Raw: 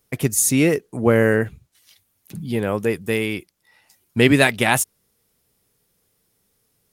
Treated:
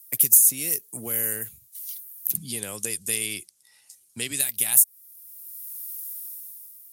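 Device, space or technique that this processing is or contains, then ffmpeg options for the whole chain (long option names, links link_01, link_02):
FM broadcast chain: -filter_complex "[0:a]asettb=1/sr,asplit=3[link_01][link_02][link_03];[link_01]atrim=end=2.374[link_04];[link_02]atrim=start=2.37:end=4.4,asetpts=PTS-STARTPTS,afade=type=in:duration=0.004:curve=qsin,afade=type=out:start_time=2.026:duration=0.004:curve=qsin,lowpass=frequency=9000:width=0.5412,lowpass=frequency=9000:width=1.3066[link_05];[link_03]atrim=start=4.396[link_06];[link_04][link_05]acrossfade=duration=0.004:curve1=hsin:curve2=qsin[link_07];[link_07][link_06]acrossfade=duration=0.004:curve1=qsin:curve2=hsin,highpass=55,dynaudnorm=framelen=210:gausssize=7:maxgain=14dB,acrossover=split=110|3000[link_08][link_09][link_10];[link_08]acompressor=threshold=-38dB:ratio=4[link_11];[link_09]acompressor=threshold=-24dB:ratio=4[link_12];[link_10]acompressor=threshold=-26dB:ratio=4[link_13];[link_11][link_12][link_13]amix=inputs=3:normalize=0,aemphasis=mode=production:type=75fm,alimiter=limit=-5dB:level=0:latency=1:release=372,asoftclip=type=hard:threshold=-7dB,lowpass=frequency=15000:width=0.5412,lowpass=frequency=15000:width=1.3066,aemphasis=mode=production:type=75fm,volume=-12dB"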